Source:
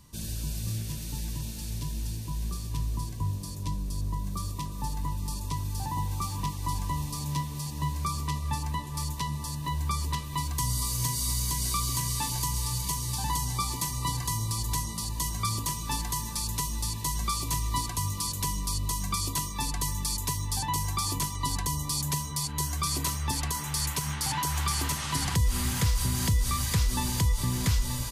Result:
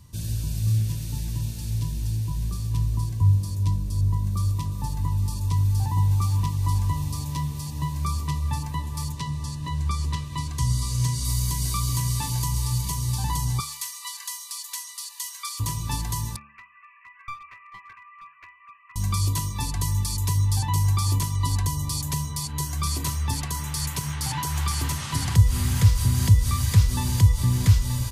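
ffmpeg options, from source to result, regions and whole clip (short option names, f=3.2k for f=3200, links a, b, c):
-filter_complex "[0:a]asettb=1/sr,asplit=3[a][b][c];[a]atrim=end=9.124[d];[b]atrim=start=9.12:end=11.25,asetpts=PTS-STARTPTS,afade=t=in:d=0.004:c=qsin,afade=t=out:st=2.126:d=0.004:c=qsin,lowpass=8.8k,equalizer=f=820:w=3.7:g=-5.5[e];[c]atrim=start=11.246[f];[d][e]acrossfade=d=0.004:c1=hsin:c2=qsin[g];[g][f]acrossfade=d=0.004:c1=qsin:c2=hsin,asettb=1/sr,asplit=3[h][i][j];[h]atrim=end=13.604[k];[i]atrim=start=13.6:end=15.6,asetpts=PTS-STARTPTS,afade=t=in:d=0.004:c=qsin,afade=t=out:st=1.996:d=0.004:c=qsin,highpass=f=1.3k:w=0.5412,highpass=f=1.3k:w=1.3066,aecho=1:1:140:0.0891,atrim=end_sample=88200[l];[j]atrim=start=15.596[m];[k][l]acrossfade=d=0.004:c1=hsin:c2=qsin[n];[n][m]acrossfade=d=0.004:c1=qsin:c2=hsin,asettb=1/sr,asplit=3[o][p][q];[o]atrim=end=16.364[r];[p]atrim=start=16.36:end=18.96,asetpts=PTS-STARTPTS,afade=t=in:d=0.004:c=qsin,afade=t=out:st=2.596:d=0.004:c=qsin,asuperpass=centerf=1700:order=20:qfactor=1.1,aeval=exprs='clip(val(0),-1,0.00841)':c=same[s];[q]atrim=start=18.956[t];[r][s]acrossfade=d=0.004:c1=hsin:c2=qsin[u];[u][t]acrossfade=d=0.004:c1=qsin:c2=hsin,equalizer=f=97:t=o:w=1:g=13.5,bandreject=f=72.26:t=h:w=4,bandreject=f=144.52:t=h:w=4,bandreject=f=216.78:t=h:w=4,bandreject=f=289.04:t=h:w=4,bandreject=f=361.3:t=h:w=4,bandreject=f=433.56:t=h:w=4,bandreject=f=505.82:t=h:w=4,bandreject=f=578.08:t=h:w=4,bandreject=f=650.34:t=h:w=4,bandreject=f=722.6:t=h:w=4,bandreject=f=794.86:t=h:w=4,bandreject=f=867.12:t=h:w=4,bandreject=f=939.38:t=h:w=4,bandreject=f=1.01164k:t=h:w=4,bandreject=f=1.0839k:t=h:w=4,bandreject=f=1.15616k:t=h:w=4,bandreject=f=1.22842k:t=h:w=4,bandreject=f=1.30068k:t=h:w=4,bandreject=f=1.37294k:t=h:w=4,bandreject=f=1.4452k:t=h:w=4,bandreject=f=1.51746k:t=h:w=4,bandreject=f=1.58972k:t=h:w=4"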